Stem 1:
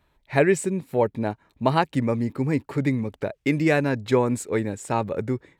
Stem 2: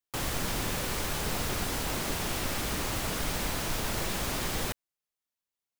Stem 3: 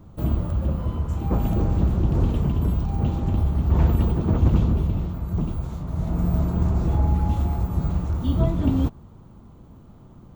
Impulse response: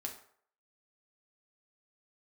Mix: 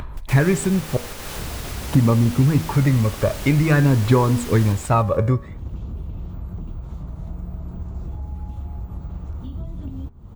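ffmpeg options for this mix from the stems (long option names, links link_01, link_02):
-filter_complex "[0:a]equalizer=frequency=1100:width_type=o:width=0.64:gain=11.5,aphaser=in_gain=1:out_gain=1:delay=1.8:decay=0.54:speed=0.48:type=sinusoidal,lowshelf=frequency=230:gain=11,volume=1.5dB,asplit=3[link_01][link_02][link_03];[link_01]atrim=end=0.97,asetpts=PTS-STARTPTS,afade=type=out:start_time=0.966:duration=0.004:curve=hsin[link_04];[link_02]atrim=start=0.97:end=1.91,asetpts=PTS-STARTPTS,volume=0[link_05];[link_03]atrim=start=1.91,asetpts=PTS-STARTPTS,afade=type=in:duration=0.004:curve=hsin[link_06];[link_04][link_05][link_06]concat=n=3:v=0:a=1,asplit=2[link_07][link_08];[1:a]volume=-4dB,asplit=2[link_09][link_10];[link_10]volume=-3dB[link_11];[2:a]acrossover=split=320|4000[link_12][link_13][link_14];[link_12]acompressor=threshold=-29dB:ratio=4[link_15];[link_13]acompressor=threshold=-42dB:ratio=4[link_16];[link_14]acompressor=threshold=-59dB:ratio=4[link_17];[link_15][link_16][link_17]amix=inputs=3:normalize=0,adelay=1200,volume=-12.5dB[link_18];[link_08]apad=whole_len=255636[link_19];[link_09][link_19]sidechaingate=range=-38dB:threshold=-40dB:ratio=16:detection=peak[link_20];[link_07][link_18]amix=inputs=2:normalize=0,lowshelf=frequency=81:gain=11.5,acompressor=threshold=-12dB:ratio=6,volume=0dB[link_21];[link_11]aecho=0:1:150|300|450|600|750|900:1|0.45|0.202|0.0911|0.041|0.0185[link_22];[link_20][link_21][link_22]amix=inputs=3:normalize=0,acompressor=mode=upward:threshold=-21dB:ratio=2.5,bandreject=frequency=80.1:width_type=h:width=4,bandreject=frequency=160.2:width_type=h:width=4,bandreject=frequency=240.3:width_type=h:width=4,bandreject=frequency=320.4:width_type=h:width=4,bandreject=frequency=400.5:width_type=h:width=4,bandreject=frequency=480.6:width_type=h:width=4,bandreject=frequency=560.7:width_type=h:width=4,bandreject=frequency=640.8:width_type=h:width=4,bandreject=frequency=720.9:width_type=h:width=4,bandreject=frequency=801:width_type=h:width=4,bandreject=frequency=881.1:width_type=h:width=4,bandreject=frequency=961.2:width_type=h:width=4,bandreject=frequency=1041.3:width_type=h:width=4,bandreject=frequency=1121.4:width_type=h:width=4,bandreject=frequency=1201.5:width_type=h:width=4,bandreject=frequency=1281.6:width_type=h:width=4,bandreject=frequency=1361.7:width_type=h:width=4,bandreject=frequency=1441.8:width_type=h:width=4,bandreject=frequency=1521.9:width_type=h:width=4,bandreject=frequency=1602:width_type=h:width=4,bandreject=frequency=1682.1:width_type=h:width=4,bandreject=frequency=1762.2:width_type=h:width=4,bandreject=frequency=1842.3:width_type=h:width=4,bandreject=frequency=1922.4:width_type=h:width=4,bandreject=frequency=2002.5:width_type=h:width=4,bandreject=frequency=2082.6:width_type=h:width=4,bandreject=frequency=2162.7:width_type=h:width=4,bandreject=frequency=2242.8:width_type=h:width=4,bandreject=frequency=2322.9:width_type=h:width=4,bandreject=frequency=2403:width_type=h:width=4,bandreject=frequency=2483.1:width_type=h:width=4"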